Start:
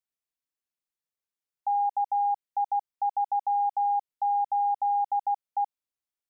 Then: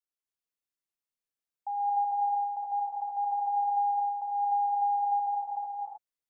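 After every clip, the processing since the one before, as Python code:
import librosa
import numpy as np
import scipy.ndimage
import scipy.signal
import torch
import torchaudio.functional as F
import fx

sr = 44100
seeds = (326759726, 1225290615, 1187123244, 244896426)

y = fx.rev_gated(x, sr, seeds[0], gate_ms=340, shape='rising', drr_db=-3.0)
y = F.gain(torch.from_numpy(y), -7.5).numpy()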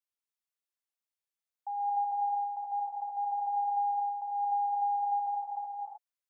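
y = scipy.signal.sosfilt(scipy.signal.butter(4, 510.0, 'highpass', fs=sr, output='sos'), x)
y = F.gain(torch.from_numpy(y), -2.5).numpy()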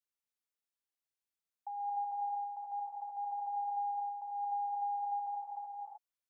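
y = fx.dynamic_eq(x, sr, hz=760.0, q=5.9, threshold_db=-43.0, ratio=4.0, max_db=-5)
y = F.gain(torch.from_numpy(y), -3.0).numpy()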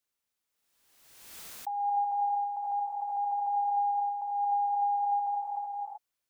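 y = fx.pre_swell(x, sr, db_per_s=43.0)
y = F.gain(torch.from_numpy(y), 7.5).numpy()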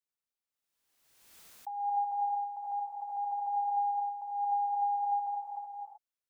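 y = fx.upward_expand(x, sr, threshold_db=-44.0, expansion=1.5)
y = F.gain(torch.from_numpy(y), -1.5).numpy()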